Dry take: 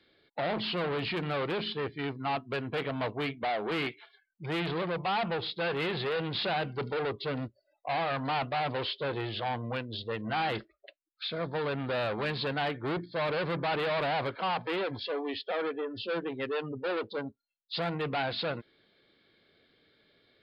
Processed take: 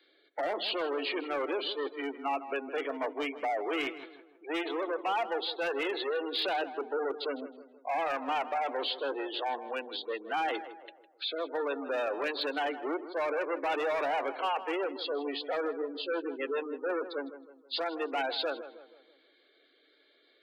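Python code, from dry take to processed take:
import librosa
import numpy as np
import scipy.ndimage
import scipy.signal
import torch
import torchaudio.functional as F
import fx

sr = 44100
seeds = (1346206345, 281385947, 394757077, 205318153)

y = fx.spec_gate(x, sr, threshold_db=-20, keep='strong')
y = scipy.signal.sosfilt(scipy.signal.butter(12, 270.0, 'highpass', fs=sr, output='sos'), y)
y = fx.high_shelf(y, sr, hz=3200.0, db=2.5)
y = np.clip(y, -10.0 ** (-25.0 / 20.0), 10.0 ** (-25.0 / 20.0))
y = fx.echo_tape(y, sr, ms=159, feedback_pct=48, wet_db=-11, lp_hz=1600.0, drive_db=18.0, wow_cents=26)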